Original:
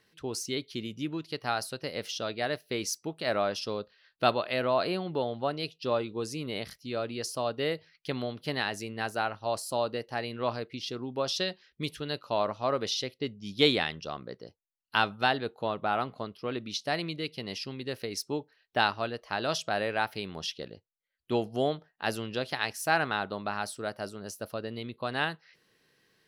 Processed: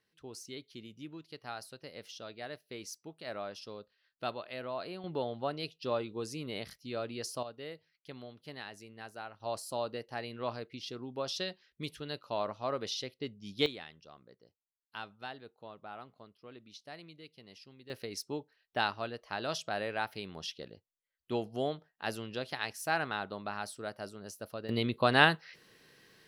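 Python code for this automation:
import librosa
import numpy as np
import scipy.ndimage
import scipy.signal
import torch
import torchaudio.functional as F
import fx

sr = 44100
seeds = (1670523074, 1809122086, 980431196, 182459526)

y = fx.gain(x, sr, db=fx.steps((0.0, -12.0), (5.04, -4.5), (7.43, -14.0), (9.4, -6.0), (13.66, -17.5), (17.9, -5.5), (24.69, 7.0)))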